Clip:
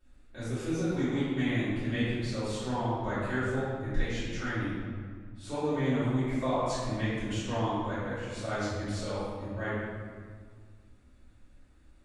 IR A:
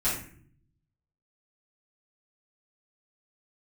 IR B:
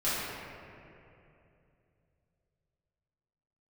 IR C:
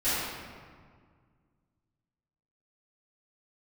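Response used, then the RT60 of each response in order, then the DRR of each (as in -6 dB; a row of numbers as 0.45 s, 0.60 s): C; 0.55 s, 2.8 s, 1.8 s; -12.5 dB, -13.0 dB, -18.0 dB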